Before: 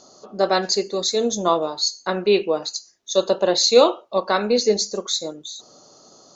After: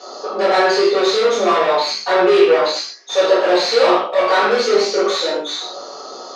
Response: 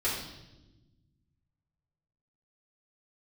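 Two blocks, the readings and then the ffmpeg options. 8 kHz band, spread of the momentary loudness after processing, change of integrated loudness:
no reading, 11 LU, +5.0 dB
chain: -filter_complex "[0:a]asplit=2[s0][s1];[s1]highpass=f=720:p=1,volume=50.1,asoftclip=type=tanh:threshold=0.75[s2];[s0][s2]amix=inputs=2:normalize=0,lowpass=f=1900:p=1,volume=0.501,flanger=delay=17:depth=2.6:speed=1.3,highpass=350,lowpass=6100[s3];[1:a]atrim=start_sample=2205,atrim=end_sample=6615[s4];[s3][s4]afir=irnorm=-1:irlink=0,volume=0.422"

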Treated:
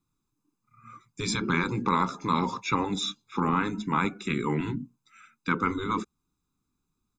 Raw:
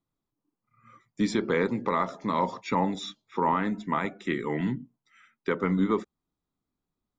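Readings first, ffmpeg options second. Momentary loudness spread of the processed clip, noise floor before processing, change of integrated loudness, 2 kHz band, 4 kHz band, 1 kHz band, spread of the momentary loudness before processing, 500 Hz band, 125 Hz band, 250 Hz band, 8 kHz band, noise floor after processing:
8 LU, under -85 dBFS, 0.0 dB, +2.5 dB, +6.0 dB, +0.5 dB, 6 LU, -5.0 dB, +2.0 dB, -1.0 dB, +8.5 dB, -81 dBFS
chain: -af "afftfilt=real='re*lt(hypot(re,im),0.282)':imag='im*lt(hypot(re,im),0.282)':win_size=1024:overlap=0.75,equalizer=f=7000:t=o:w=0.67:g=7,aecho=1:1:0.8:0.81,volume=1.26"

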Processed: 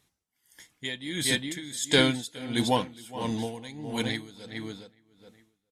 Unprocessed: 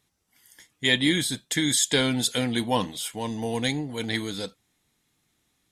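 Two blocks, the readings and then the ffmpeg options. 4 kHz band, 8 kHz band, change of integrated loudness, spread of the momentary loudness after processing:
-4.0 dB, -7.0 dB, -4.0 dB, 16 LU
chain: -filter_complex "[0:a]asplit=2[s0][s1];[s1]adelay=415,lowpass=f=3400:p=1,volume=0.447,asplit=2[s2][s3];[s3]adelay=415,lowpass=f=3400:p=1,volume=0.25,asplit=2[s4][s5];[s5]adelay=415,lowpass=f=3400:p=1,volume=0.25[s6];[s0][s2][s4][s6]amix=inputs=4:normalize=0,aeval=exprs='val(0)*pow(10,-19*(0.5-0.5*cos(2*PI*1.5*n/s))/20)':c=same,volume=1.26"

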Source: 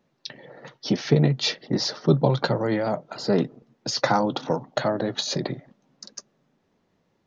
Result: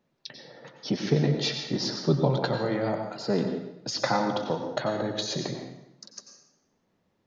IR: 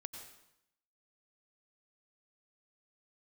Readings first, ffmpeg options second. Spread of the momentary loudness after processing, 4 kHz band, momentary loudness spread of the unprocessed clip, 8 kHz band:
20 LU, -3.5 dB, 20 LU, no reading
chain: -filter_complex "[1:a]atrim=start_sample=2205[s0];[0:a][s0]afir=irnorm=-1:irlink=0"

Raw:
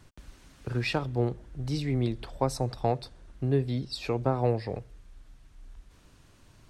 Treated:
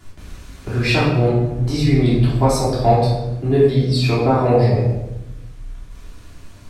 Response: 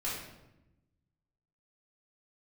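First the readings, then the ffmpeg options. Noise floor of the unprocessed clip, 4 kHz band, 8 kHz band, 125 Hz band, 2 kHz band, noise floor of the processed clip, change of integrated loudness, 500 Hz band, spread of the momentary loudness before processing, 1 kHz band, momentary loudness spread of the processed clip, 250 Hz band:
-58 dBFS, +12.5 dB, +13.0 dB, +14.5 dB, +13.5 dB, -40 dBFS, +13.5 dB, +13.5 dB, 9 LU, +13.5 dB, 11 LU, +13.5 dB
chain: -filter_complex "[0:a]highshelf=f=8900:g=5[s0];[1:a]atrim=start_sample=2205,asetrate=42336,aresample=44100[s1];[s0][s1]afir=irnorm=-1:irlink=0,volume=2.66"

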